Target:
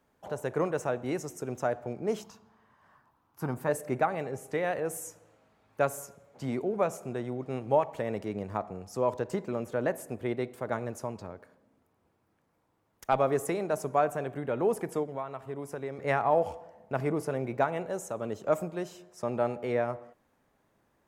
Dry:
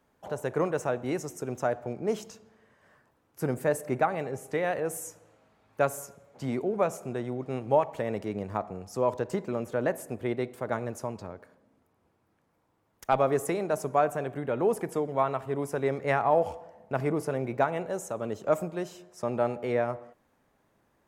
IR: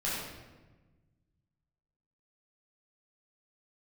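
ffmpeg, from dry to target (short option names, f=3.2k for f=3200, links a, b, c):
-filter_complex "[0:a]asettb=1/sr,asplit=3[a][b][c];[a]atrim=end=2.224[d];[b]atrim=start=2.22:end=3.69,asetpts=PTS-STARTPTS,afade=t=in:d=0.004:c=qsin,afade=t=out:st=1.466:d=0.004:c=qsin,equalizer=f=500:t=o:w=1:g=-9,equalizer=f=1k:t=o:w=1:g=10,equalizer=f=2k:t=o:w=1:g=-5,equalizer=f=8k:t=o:w=1:g=-7[e];[c]atrim=start=3.686[f];[d][e]acrossfade=d=0.004:c1=hsin:c2=qsin[g];[g][f]acrossfade=d=0.004:c1=qsin:c2=hsin,asettb=1/sr,asplit=3[h][i][j];[h]atrim=end=15.034[k];[i]atrim=start=15.03:end=15.99,asetpts=PTS-STARTPTS,afade=t=in:d=0.004:c=qsin,afade=t=out:st=0.956:d=0.004:c=qsin,acompressor=threshold=-35dB:ratio=2.5[l];[j]atrim=start=15.986[m];[k][l]acrossfade=d=0.004:c1=hsin:c2=qsin[n];[n][m]acrossfade=d=0.004:c1=qsin:c2=hsin,volume=-1.5dB"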